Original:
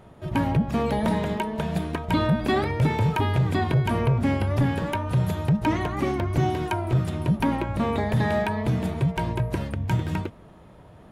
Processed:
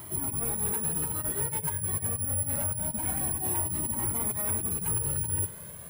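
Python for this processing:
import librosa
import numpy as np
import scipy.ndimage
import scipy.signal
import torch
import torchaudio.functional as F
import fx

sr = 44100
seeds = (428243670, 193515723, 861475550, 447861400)

p1 = fx.delta_mod(x, sr, bps=64000, step_db=-40.0)
p2 = scipy.signal.sosfilt(scipy.signal.butter(2, 87.0, 'highpass', fs=sr, output='sos'), p1)
p3 = fx.bass_treble(p2, sr, bass_db=5, treble_db=-4)
p4 = fx.over_compress(p3, sr, threshold_db=-24.0, ratio=-0.5)
p5 = fx.stretch_vocoder_free(p4, sr, factor=0.53)
p6 = 10.0 ** (-27.0 / 20.0) * np.tanh(p5 / 10.0 ** (-27.0 / 20.0))
p7 = (np.kron(scipy.signal.resample_poly(p6, 1, 4), np.eye(4)[0]) * 4)[:len(p6)]
p8 = p7 + fx.echo_single(p7, sr, ms=95, db=-18.0, dry=0)
y = fx.comb_cascade(p8, sr, direction='rising', hz=0.25)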